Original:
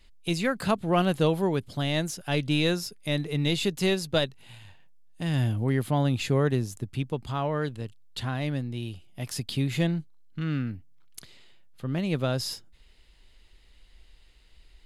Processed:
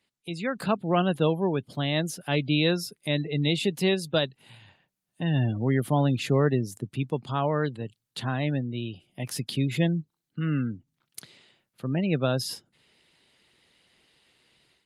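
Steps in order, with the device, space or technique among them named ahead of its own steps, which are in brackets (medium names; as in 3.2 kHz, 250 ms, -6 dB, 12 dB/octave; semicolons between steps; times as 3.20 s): 0.50–2.14 s: gate with hold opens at -34 dBFS; noise-suppressed video call (high-pass 120 Hz 24 dB/octave; spectral gate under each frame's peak -30 dB strong; level rider gain up to 11 dB; trim -8 dB; Opus 32 kbps 48 kHz)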